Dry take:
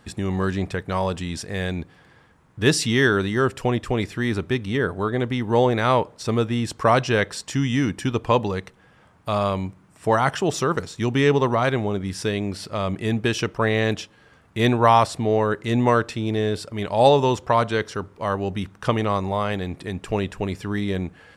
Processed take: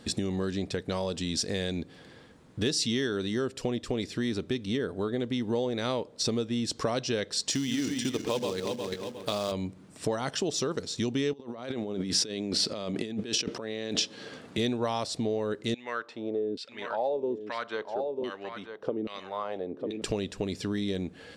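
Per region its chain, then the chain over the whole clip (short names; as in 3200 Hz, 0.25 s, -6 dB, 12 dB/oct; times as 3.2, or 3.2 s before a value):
7.5–9.52 regenerating reverse delay 0.18 s, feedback 50%, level -5 dB + low shelf 220 Hz -7.5 dB + short-mantissa float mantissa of 2-bit
11.33–14.58 HPF 150 Hz + high shelf 9100 Hz -6.5 dB + negative-ratio compressor -34 dBFS
15.74–20.02 LFO band-pass saw down 1.2 Hz 260–2900 Hz + echo 0.946 s -11.5 dB
whole clip: graphic EQ 250/500/1000/4000/8000 Hz +8/+7/-3/+9/+5 dB; compressor 4:1, threshold -27 dBFS; dynamic EQ 5400 Hz, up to +6 dB, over -49 dBFS, Q 1.2; gain -2.5 dB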